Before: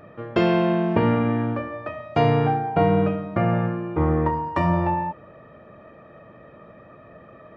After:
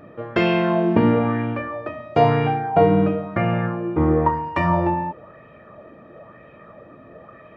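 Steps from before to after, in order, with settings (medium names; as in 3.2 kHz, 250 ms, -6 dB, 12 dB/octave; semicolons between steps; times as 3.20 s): sweeping bell 1 Hz 250–2700 Hz +8 dB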